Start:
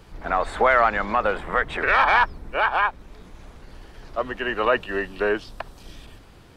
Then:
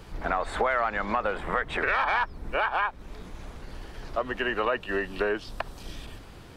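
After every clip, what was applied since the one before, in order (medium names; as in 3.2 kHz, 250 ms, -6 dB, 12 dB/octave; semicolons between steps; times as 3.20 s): compression 3:1, threshold -28 dBFS, peak gain reduction 11 dB; trim +2.5 dB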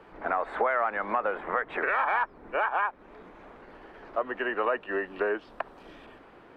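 three-band isolator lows -20 dB, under 240 Hz, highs -23 dB, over 2.4 kHz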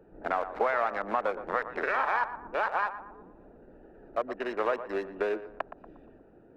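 local Wiener filter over 41 samples; band-passed feedback delay 118 ms, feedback 46%, band-pass 820 Hz, level -11 dB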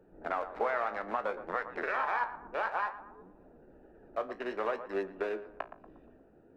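flange 0.6 Hz, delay 9.9 ms, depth 9.8 ms, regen +58%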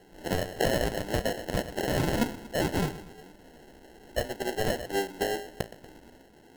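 sample-and-hold 37×; trim +5 dB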